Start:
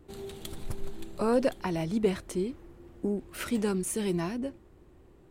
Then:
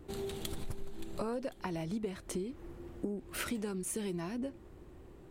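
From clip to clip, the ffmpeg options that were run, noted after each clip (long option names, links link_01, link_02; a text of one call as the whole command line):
ffmpeg -i in.wav -af "acompressor=threshold=-37dB:ratio=10,volume=3dB" out.wav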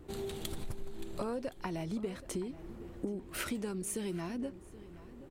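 ffmpeg -i in.wav -filter_complex "[0:a]asplit=2[link_01][link_02];[link_02]adelay=776,lowpass=frequency=3200:poles=1,volume=-16.5dB,asplit=2[link_03][link_04];[link_04]adelay=776,lowpass=frequency=3200:poles=1,volume=0.3,asplit=2[link_05][link_06];[link_06]adelay=776,lowpass=frequency=3200:poles=1,volume=0.3[link_07];[link_01][link_03][link_05][link_07]amix=inputs=4:normalize=0" out.wav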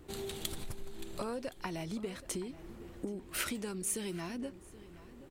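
ffmpeg -i in.wav -af "tiltshelf=frequency=1400:gain=-3.5,volume=1dB" out.wav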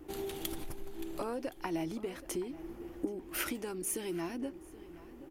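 ffmpeg -i in.wav -af "equalizer=frequency=100:width_type=o:width=0.33:gain=-11,equalizer=frequency=200:width_type=o:width=0.33:gain=-7,equalizer=frequency=315:width_type=o:width=0.33:gain=11,equalizer=frequency=800:width_type=o:width=0.33:gain=5,equalizer=frequency=4000:width_type=o:width=0.33:gain=-7,equalizer=frequency=8000:width_type=o:width=0.33:gain=-7,equalizer=frequency=12500:width_type=o:width=0.33:gain=5" out.wav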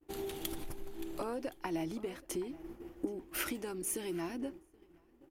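ffmpeg -i in.wav -af "agate=range=-33dB:threshold=-41dB:ratio=3:detection=peak,volume=-1dB" out.wav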